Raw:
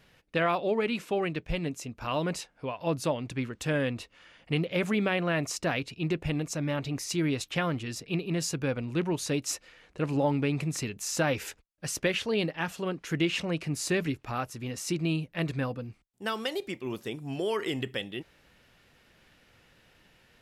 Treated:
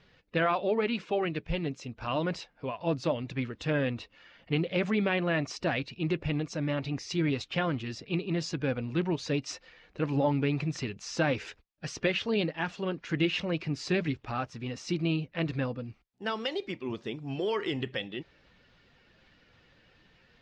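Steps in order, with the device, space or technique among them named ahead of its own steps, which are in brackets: clip after many re-uploads (LPF 5300 Hz 24 dB/oct; bin magnitudes rounded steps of 15 dB)

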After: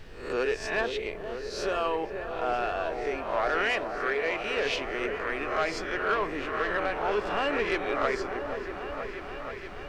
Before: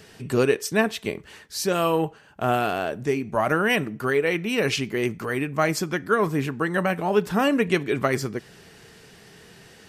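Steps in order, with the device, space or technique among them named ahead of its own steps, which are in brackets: spectral swells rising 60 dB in 0.57 s; aircraft cabin announcement (BPF 450–4100 Hz; soft clip -14 dBFS, distortion -17 dB; brown noise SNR 14 dB); 3.64–4.57 HPF 180 Hz 6 dB/oct; high shelf 8000 Hz -4 dB; repeats that get brighter 0.478 s, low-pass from 750 Hz, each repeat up 1 oct, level -6 dB; gain -4.5 dB

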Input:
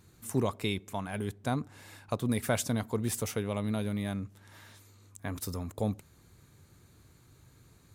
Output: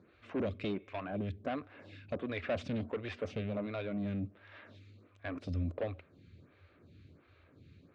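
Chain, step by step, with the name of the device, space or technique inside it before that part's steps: vibe pedal into a guitar amplifier (photocell phaser 1.4 Hz; tube stage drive 35 dB, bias 0.3; speaker cabinet 84–3600 Hz, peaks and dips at 86 Hz +9 dB, 120 Hz -4 dB, 280 Hz +4 dB, 580 Hz +6 dB, 890 Hz -9 dB, 2500 Hz +5 dB); gain +3.5 dB

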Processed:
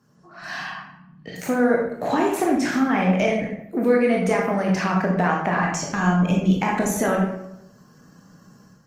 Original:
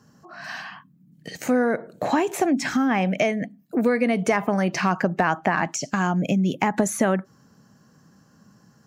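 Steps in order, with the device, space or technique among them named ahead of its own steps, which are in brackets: 0.7–1.36 air absorption 200 m; far-field microphone of a smart speaker (reverb RT60 0.80 s, pre-delay 18 ms, DRR -1.5 dB; HPF 89 Hz 12 dB/oct; AGC gain up to 7.5 dB; gain -6 dB; Opus 24 kbps 48000 Hz)

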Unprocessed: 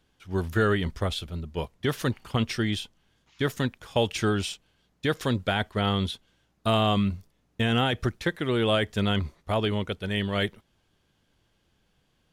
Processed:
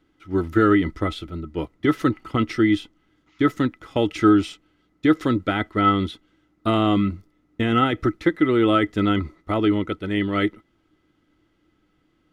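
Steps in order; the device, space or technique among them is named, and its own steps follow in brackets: inside a helmet (high shelf 4800 Hz -9 dB; small resonant body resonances 310/1300/2000 Hz, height 18 dB, ringing for 70 ms)

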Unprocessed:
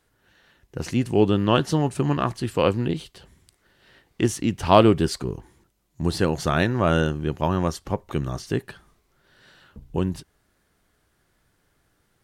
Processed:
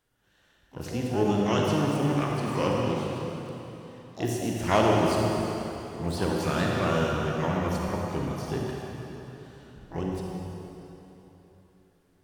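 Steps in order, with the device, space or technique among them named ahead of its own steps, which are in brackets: shimmer-style reverb (harmoniser +12 st -8 dB; reverb RT60 3.4 s, pre-delay 33 ms, DRR -2 dB); gain -9 dB

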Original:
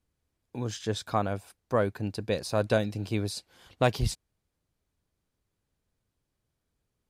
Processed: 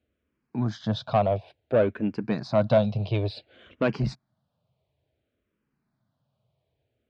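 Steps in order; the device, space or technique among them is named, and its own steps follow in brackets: barber-pole phaser into a guitar amplifier (endless phaser -0.57 Hz; soft clip -25 dBFS, distortion -12 dB; speaker cabinet 85–3900 Hz, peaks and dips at 130 Hz +8 dB, 220 Hz +5 dB, 630 Hz +9 dB, 1900 Hz -3 dB); gain +6.5 dB

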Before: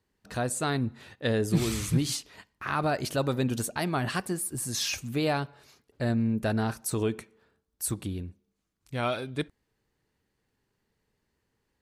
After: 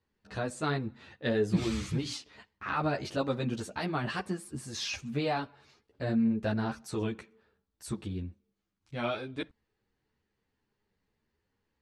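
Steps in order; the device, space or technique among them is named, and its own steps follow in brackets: string-machine ensemble chorus (ensemble effect; LPF 5100 Hz 12 dB/oct)

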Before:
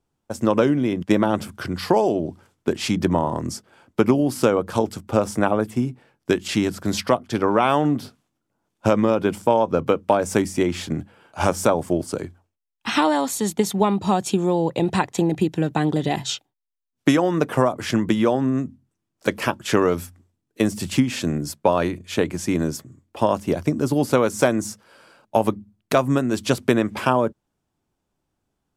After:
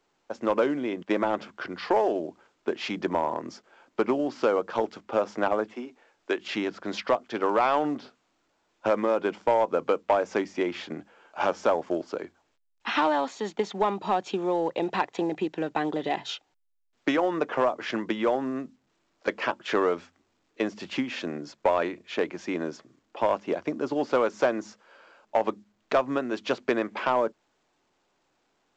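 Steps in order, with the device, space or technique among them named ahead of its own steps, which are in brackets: 5.73–6.39 Bessel high-pass 320 Hz, order 6; telephone (BPF 390–3100 Hz; soft clip -10.5 dBFS, distortion -18 dB; gain -2 dB; A-law 128 kbps 16000 Hz)

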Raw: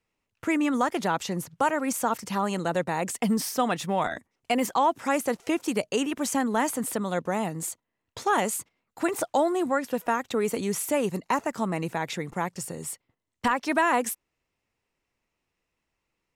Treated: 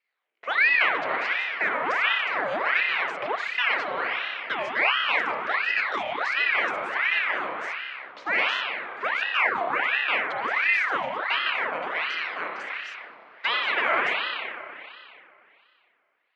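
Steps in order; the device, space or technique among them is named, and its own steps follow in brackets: spring tank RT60 2.6 s, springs 30 ms, chirp 65 ms, DRR -2 dB; voice changer toy (ring modulator with a swept carrier 1300 Hz, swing 75%, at 1.4 Hz; speaker cabinet 530–4100 Hz, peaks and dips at 870 Hz -3 dB, 2100 Hz +5 dB, 3500 Hz -3 dB)

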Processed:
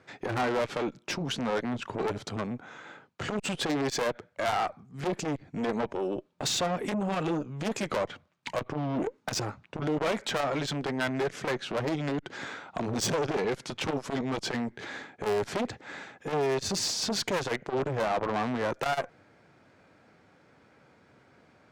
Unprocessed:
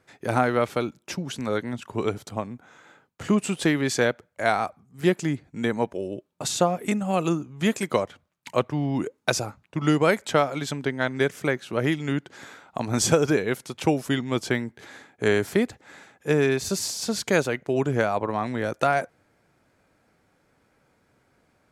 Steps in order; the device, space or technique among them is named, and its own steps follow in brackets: valve radio (BPF 88–5200 Hz; tube stage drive 28 dB, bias 0.2; core saturation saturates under 440 Hz); gain +6 dB

